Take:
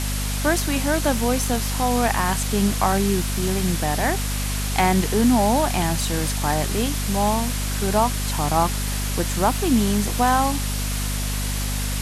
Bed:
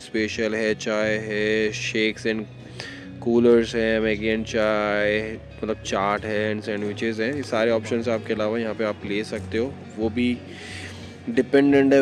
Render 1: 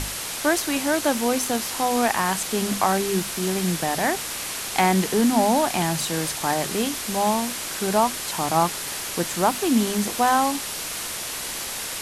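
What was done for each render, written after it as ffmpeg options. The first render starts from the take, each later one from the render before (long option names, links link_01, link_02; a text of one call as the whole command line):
ffmpeg -i in.wav -af "bandreject=frequency=50:width_type=h:width=6,bandreject=frequency=100:width_type=h:width=6,bandreject=frequency=150:width_type=h:width=6,bandreject=frequency=200:width_type=h:width=6,bandreject=frequency=250:width_type=h:width=6" out.wav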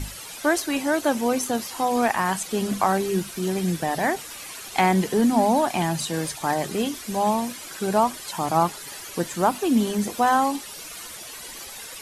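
ffmpeg -i in.wav -af "afftdn=noise_reduction=12:noise_floor=-31" out.wav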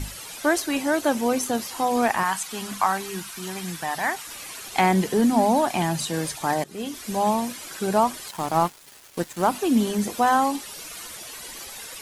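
ffmpeg -i in.wav -filter_complex "[0:a]asettb=1/sr,asplit=3[link_01][link_02][link_03];[link_01]atrim=end=2.234[link_04];[link_02]atrim=start=2.23:end=4.27,asetpts=PTS-STARTPTS,afade=type=in:duration=0.004:curve=qsin,afade=type=out:start_time=2.036:duration=0.004:curve=qsin,lowshelf=frequency=710:width_type=q:width=1.5:gain=-8.5[link_05];[link_03]atrim=start=4.266[link_06];[link_04][link_05]acrossfade=duration=0.004:curve1=hsin:curve2=qsin[link_07];[link_07][link_06]acrossfade=duration=0.004:curve1=qsin:curve2=hsin,asettb=1/sr,asplit=3[link_08][link_09][link_10];[link_08]atrim=end=8.284[link_11];[link_09]atrim=start=8.28:end=9.49,asetpts=PTS-STARTPTS,afade=type=in:duration=0.004:curve=qsin,afade=type=out:start_time=1.206:duration=0.004:curve=qsin,aeval=exprs='sgn(val(0))*max(abs(val(0))-0.0168,0)':channel_layout=same[link_12];[link_10]atrim=start=9.486[link_13];[link_11][link_12]acrossfade=duration=0.004:curve1=hsin:curve2=qsin[link_14];[link_14][link_13]acrossfade=duration=0.004:curve1=qsin:curve2=hsin,asplit=2[link_15][link_16];[link_15]atrim=end=6.64,asetpts=PTS-STARTPTS,afade=type=out:start_time=6.636:duration=0.004:curve=hsin:silence=0.1[link_17];[link_16]atrim=start=6.64,asetpts=PTS-STARTPTS,afade=type=in:duration=0.44:silence=0.1[link_18];[link_17][link_18]concat=n=2:v=0:a=1" out.wav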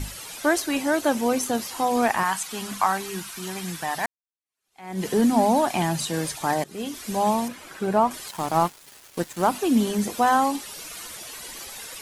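ffmpeg -i in.wav -filter_complex "[0:a]asettb=1/sr,asplit=3[link_01][link_02][link_03];[link_01]atrim=end=7.484[link_04];[link_02]atrim=start=7.48:end=8.11,asetpts=PTS-STARTPTS,afade=type=in:duration=0.004:curve=qsin,afade=type=out:start_time=0.626:duration=0.004:curve=qsin,acrossover=split=2700[link_05][link_06];[link_06]acompressor=threshold=-47dB:ratio=4:attack=1:release=60[link_07];[link_05][link_07]amix=inputs=2:normalize=0[link_08];[link_03]atrim=start=8.106[link_09];[link_04][link_08]acrossfade=duration=0.004:curve1=hsin:curve2=qsin[link_10];[link_10][link_09]acrossfade=duration=0.004:curve1=qsin:curve2=hsin,asplit=2[link_11][link_12];[link_11]atrim=end=4.06,asetpts=PTS-STARTPTS,afade=type=out:start_time=4.056:duration=0.004:curve=hsin[link_13];[link_12]atrim=start=4.06,asetpts=PTS-STARTPTS,afade=type=in:duration=1:curve=exp[link_14];[link_13][link_14]concat=n=2:v=0:a=1" out.wav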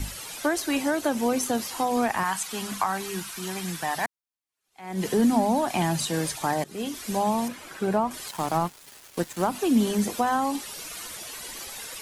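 ffmpeg -i in.wav -filter_complex "[0:a]acrossover=split=230[link_01][link_02];[link_02]acompressor=threshold=-21dB:ratio=6[link_03];[link_01][link_03]amix=inputs=2:normalize=0" out.wav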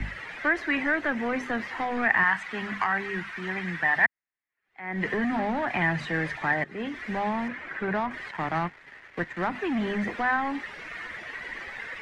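ffmpeg -i in.wav -filter_complex "[0:a]acrossover=split=110|1300[link_01][link_02][link_03];[link_02]asoftclip=type=tanh:threshold=-26dB[link_04];[link_03]lowpass=frequency=1900:width_type=q:width=5.8[link_05];[link_01][link_04][link_05]amix=inputs=3:normalize=0" out.wav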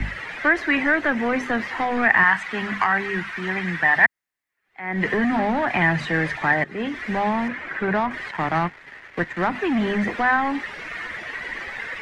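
ffmpeg -i in.wav -af "volume=6dB,alimiter=limit=-3dB:level=0:latency=1" out.wav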